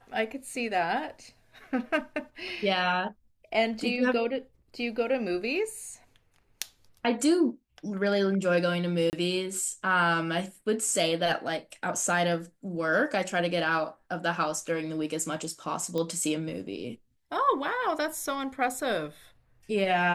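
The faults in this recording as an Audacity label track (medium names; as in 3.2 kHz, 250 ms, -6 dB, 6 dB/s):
9.100000	9.130000	dropout 29 ms
15.980000	15.980000	pop -19 dBFS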